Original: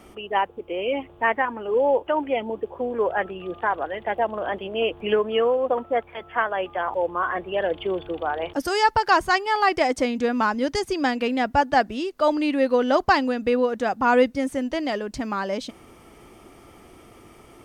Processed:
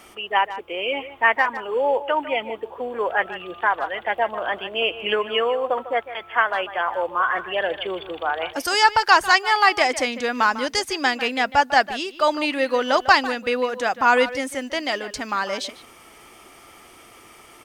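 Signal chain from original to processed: tilt shelf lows -8 dB, about 640 Hz; speakerphone echo 150 ms, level -13 dB

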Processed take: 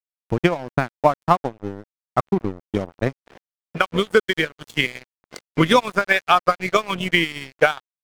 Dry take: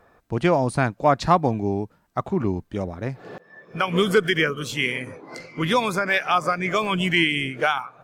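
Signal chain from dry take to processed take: transient shaper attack +12 dB, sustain -11 dB; level rider gain up to 10 dB; crossover distortion -32.5 dBFS; trim -1 dB

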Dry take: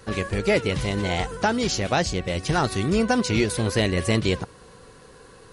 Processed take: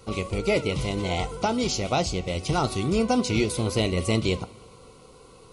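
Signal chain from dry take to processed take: Butterworth band-stop 1.7 kHz, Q 2.7; on a send: reverberation, pre-delay 3 ms, DRR 12.5 dB; on the sum: trim -2 dB

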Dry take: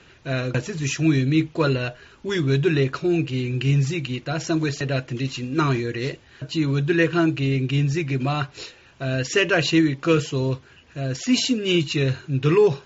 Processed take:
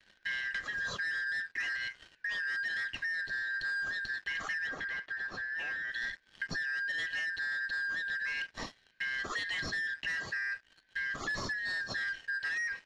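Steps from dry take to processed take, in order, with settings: four frequency bands reordered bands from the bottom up 4123; gate with hold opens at -44 dBFS; tilt EQ -2 dB/octave; waveshaping leveller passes 3; compression 10:1, threshold -24 dBFS, peak gain reduction 12.5 dB; 4.67–5.92 s: overdrive pedal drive 10 dB, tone 1.2 kHz, clips at -16.5 dBFS; distance through air 87 m; trim -9 dB

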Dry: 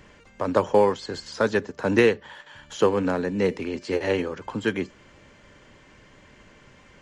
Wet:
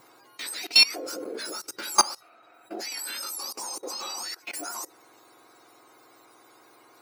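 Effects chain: spectrum inverted on a logarithmic axis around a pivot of 1.5 kHz; 1.03–1.82 s: tone controls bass +8 dB, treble +1 dB; level held to a coarse grid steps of 21 dB; trim +7 dB

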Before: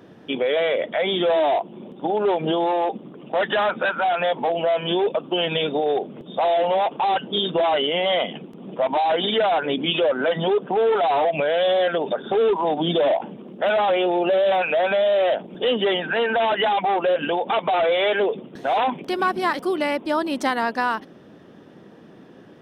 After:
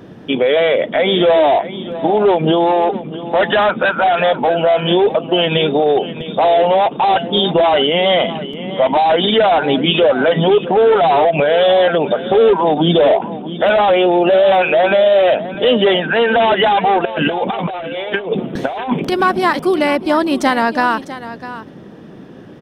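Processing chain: bass shelf 170 Hz +9 dB; 17.05–19.12 s: compressor with a negative ratio -25 dBFS, ratio -0.5; delay 651 ms -14 dB; trim +7 dB

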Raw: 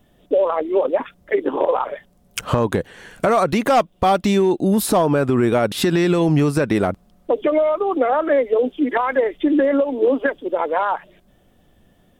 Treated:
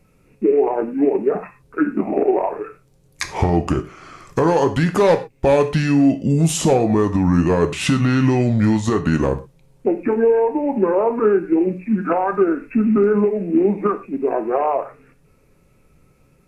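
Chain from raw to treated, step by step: gated-style reverb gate 110 ms falling, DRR 7.5 dB; tape speed -26%

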